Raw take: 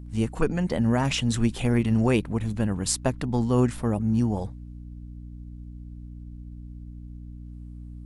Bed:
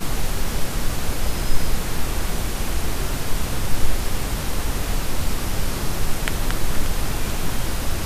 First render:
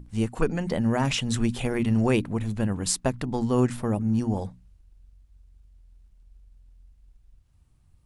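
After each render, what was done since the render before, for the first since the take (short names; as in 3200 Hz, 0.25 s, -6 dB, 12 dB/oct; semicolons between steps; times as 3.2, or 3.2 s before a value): notches 60/120/180/240/300 Hz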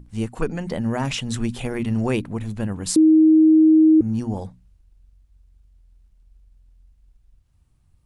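2.96–4.01 bleep 315 Hz -9.5 dBFS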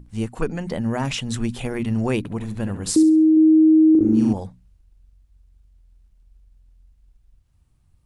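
2.18–3.37 flutter echo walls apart 11.8 m, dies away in 0.41 s; 3.91–4.33 flutter echo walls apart 6.9 m, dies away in 1.5 s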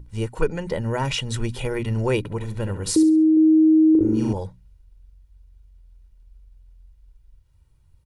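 bell 7600 Hz -3 dB 0.59 oct; comb 2.1 ms, depth 58%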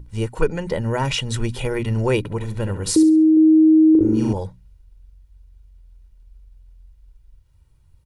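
gain +2.5 dB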